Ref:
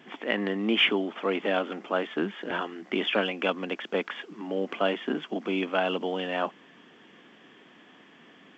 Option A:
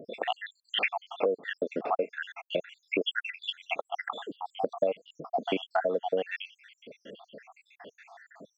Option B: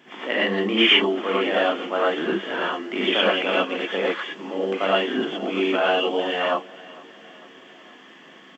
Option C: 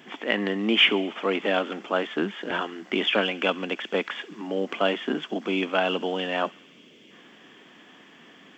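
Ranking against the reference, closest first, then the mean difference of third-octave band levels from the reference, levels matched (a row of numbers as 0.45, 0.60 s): C, B, A; 1.5, 5.0, 14.0 dB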